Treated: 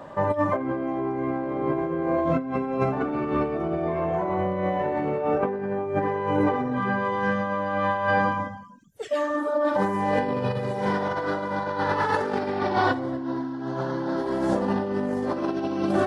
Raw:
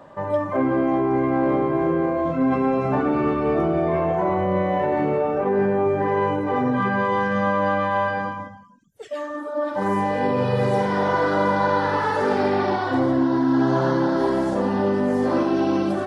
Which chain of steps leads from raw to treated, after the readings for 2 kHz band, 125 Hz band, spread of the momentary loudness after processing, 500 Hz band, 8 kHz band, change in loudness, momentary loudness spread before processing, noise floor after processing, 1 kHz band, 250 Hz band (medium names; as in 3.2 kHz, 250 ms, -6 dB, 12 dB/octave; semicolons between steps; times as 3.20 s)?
-2.5 dB, -4.0 dB, 5 LU, -4.0 dB, no reading, -4.5 dB, 3 LU, -33 dBFS, -3.5 dB, -5.0 dB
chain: compressor with a negative ratio -24 dBFS, ratio -0.5